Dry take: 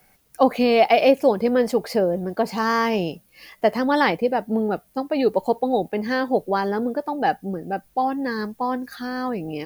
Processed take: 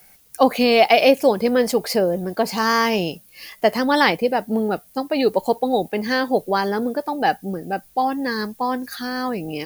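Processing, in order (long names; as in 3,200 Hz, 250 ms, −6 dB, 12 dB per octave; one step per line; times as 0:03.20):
high-shelf EQ 2,700 Hz +9.5 dB
level +1 dB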